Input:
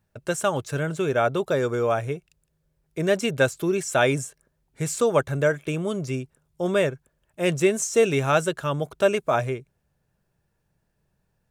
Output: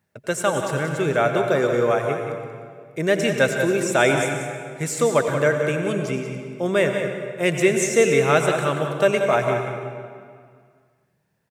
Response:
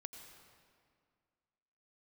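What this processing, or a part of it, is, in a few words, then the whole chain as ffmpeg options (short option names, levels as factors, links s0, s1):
PA in a hall: -filter_complex "[0:a]highpass=130,equalizer=f=2000:t=o:w=0.27:g=7.5,aecho=1:1:183:0.355[s0];[1:a]atrim=start_sample=2205[s1];[s0][s1]afir=irnorm=-1:irlink=0,volume=2.24"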